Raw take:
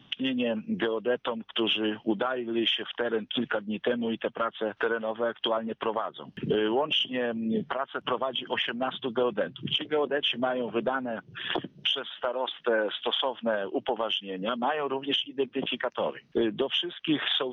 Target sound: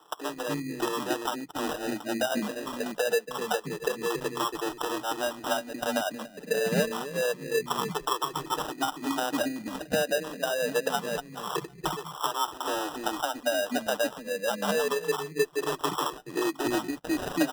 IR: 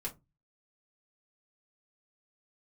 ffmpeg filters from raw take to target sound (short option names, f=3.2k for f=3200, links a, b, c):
-filter_complex "[0:a]afftfilt=real='re*pow(10,19/40*sin(2*PI*(0.63*log(max(b,1)*sr/1024/100)/log(2)-(-0.26)*(pts-256)/sr)))':imag='im*pow(10,19/40*sin(2*PI*(0.63*log(max(b,1)*sr/1024/100)/log(2)-(-0.26)*(pts-256)/sr)))':win_size=1024:overlap=0.75,equalizer=f=2.1k:w=2.6:g=-9.5,aecho=1:1:6.8:0.44,adynamicequalizer=threshold=0.00251:dfrequency=110:dqfactor=2.6:tfrequency=110:tqfactor=2.6:attack=5:release=100:ratio=0.375:range=3:mode=cutabove:tftype=bell,acrossover=split=340[a][b];[b]acompressor=threshold=-24dB:ratio=10[c];[a][c]amix=inputs=2:normalize=0,afreqshift=16,acrossover=split=340|3500[d][e][f];[d]adelay=280[g];[f]adelay=750[h];[g][e][h]amix=inputs=3:normalize=0,acrusher=samples=20:mix=1:aa=0.000001"